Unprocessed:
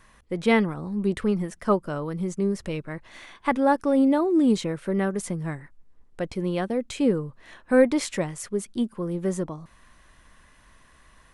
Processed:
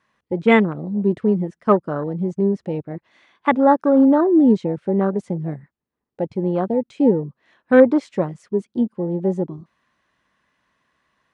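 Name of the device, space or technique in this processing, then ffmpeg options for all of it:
over-cleaned archive recording: -af "highpass=140,lowpass=5.1k,afwtdn=0.0316,volume=6.5dB"

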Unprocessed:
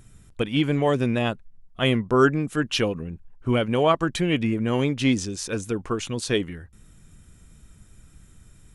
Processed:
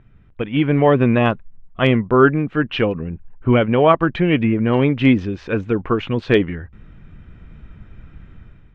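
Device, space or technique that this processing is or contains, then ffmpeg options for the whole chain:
action camera in a waterproof case: -filter_complex "[0:a]asplit=3[a][b][c];[a]afade=t=out:st=0.93:d=0.02[d];[b]adynamicequalizer=threshold=0.00355:dfrequency=1100:dqfactor=5.6:tfrequency=1100:tqfactor=5.6:attack=5:release=100:ratio=0.375:range=3:mode=boostabove:tftype=bell,afade=t=in:st=0.93:d=0.02,afade=t=out:st=1.84:d=0.02[e];[c]afade=t=in:st=1.84:d=0.02[f];[d][e][f]amix=inputs=3:normalize=0,lowpass=f=2.7k:w=0.5412,lowpass=f=2.7k:w=1.3066,dynaudnorm=f=420:g=3:m=10.5dB" -ar 44100 -c:a aac -b:a 96k

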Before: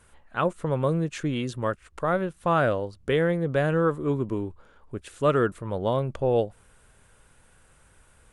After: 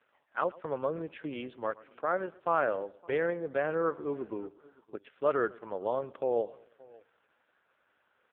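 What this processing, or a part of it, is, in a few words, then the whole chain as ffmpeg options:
satellite phone: -af "highpass=370,lowpass=3.3k,aecho=1:1:114|228|342:0.0891|0.0321|0.0116,aecho=1:1:569:0.0668,volume=-4dB" -ar 8000 -c:a libopencore_amrnb -b:a 4750

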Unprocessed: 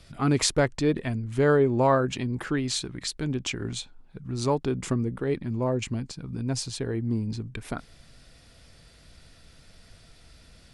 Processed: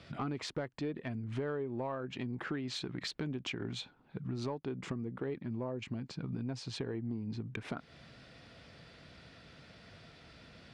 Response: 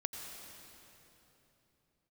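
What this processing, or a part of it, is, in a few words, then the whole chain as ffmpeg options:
AM radio: -af "highpass=120,lowpass=3.4k,acompressor=threshold=-37dB:ratio=8,asoftclip=type=tanh:threshold=-27dB,volume=2.5dB"

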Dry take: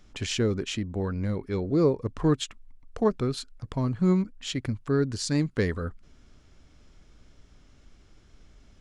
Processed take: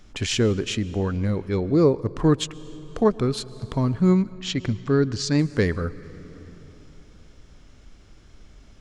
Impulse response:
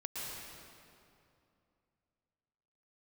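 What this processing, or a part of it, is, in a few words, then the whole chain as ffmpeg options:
compressed reverb return: -filter_complex "[0:a]asplit=2[a][b];[1:a]atrim=start_sample=2205[c];[b][c]afir=irnorm=-1:irlink=0,acompressor=threshold=-30dB:ratio=5,volume=-11dB[d];[a][d]amix=inputs=2:normalize=0,asettb=1/sr,asplit=3[e][f][g];[e]atrim=end=4.324[h];[f]atrim=start=4.32:end=5.39,asetpts=PTS-STARTPTS,afade=t=in:d=0.004:c=qsin,afade=t=out:st=1.066:d=0.004:c=qsin,lowpass=f=6.9k:w=0.5412,lowpass=f=6.9k:w=1.3066[i];[g]atrim=start=5.386[j];[h][i]acrossfade=d=0.004:c1=hsin:c2=qsin[k];[k][j]acrossfade=d=0.004:c1=qsin:c2=hsin,volume=4dB"

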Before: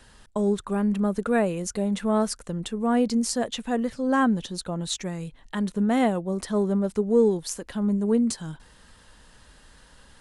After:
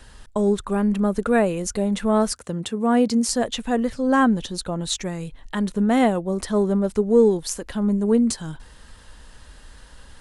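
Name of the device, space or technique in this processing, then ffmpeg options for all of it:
low shelf boost with a cut just above: -filter_complex "[0:a]asettb=1/sr,asplit=3[a][b][c];[a]atrim=end=2.324[d];[b]atrim=start=2.32:end=3.29,asetpts=PTS-STARTPTS,afade=t=in:d=0.004:c=qsin,afade=t=out:st=0.966:d=0.004:c=qsin,highpass=f=77:w=0.5412,highpass=f=77:w=1.3066[e];[c]atrim=start=3.286[f];[d][e]acrossfade=d=0.004:c1=hsin:c2=qsin[g];[g][f]acrossfade=d=0.004:c1=qsin:c2=hsin,lowshelf=f=100:g=7,equalizer=f=170:t=o:w=0.78:g=-3.5,volume=4dB"

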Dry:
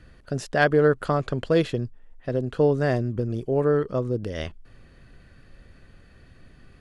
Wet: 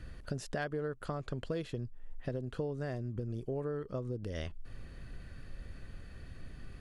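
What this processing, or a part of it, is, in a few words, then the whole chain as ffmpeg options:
ASMR close-microphone chain: -af "lowshelf=f=110:g=7,acompressor=threshold=-34dB:ratio=6,highshelf=f=6.6k:g=4.5,volume=-1dB"

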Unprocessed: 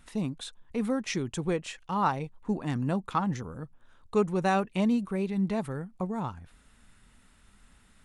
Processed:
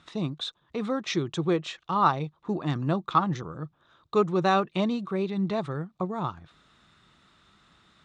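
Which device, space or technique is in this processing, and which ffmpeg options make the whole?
car door speaker: -af "highpass=94,equalizer=f=150:t=q:w=4:g=6,equalizer=f=240:t=q:w=4:g=-5,equalizer=f=340:t=q:w=4:g=8,equalizer=f=660:t=q:w=4:g=4,equalizer=f=1.2k:t=q:w=4:g=9,equalizer=f=3.7k:t=q:w=4:g=10,lowpass=f=6.6k:w=0.5412,lowpass=f=6.6k:w=1.3066"

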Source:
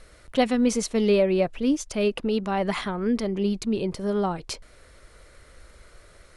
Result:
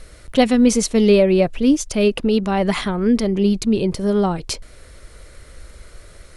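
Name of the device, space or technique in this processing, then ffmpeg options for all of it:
smiley-face EQ: -af "lowshelf=f=150:g=3.5,equalizer=f=1.1k:t=o:w=2:g=-3.5,highshelf=f=9.6k:g=3.5,volume=7.5dB"

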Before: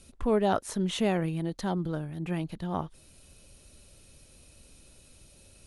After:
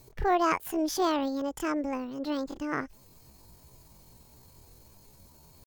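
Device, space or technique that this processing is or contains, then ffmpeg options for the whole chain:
chipmunk voice: -af "asetrate=74167,aresample=44100,atempo=0.594604"

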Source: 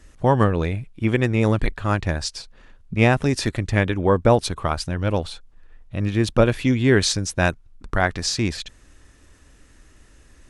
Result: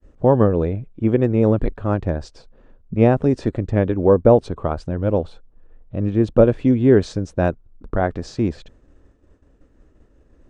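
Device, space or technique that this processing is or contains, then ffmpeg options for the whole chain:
hearing-loss simulation: -af "lowpass=1.6k,agate=range=-33dB:threshold=-46dB:ratio=3:detection=peak,equalizer=f=250:t=o:w=1:g=3,equalizer=f=500:t=o:w=1:g=6,equalizer=f=1k:t=o:w=1:g=-3,equalizer=f=2k:t=o:w=1:g=-7,equalizer=f=8k:t=o:w=1:g=12"

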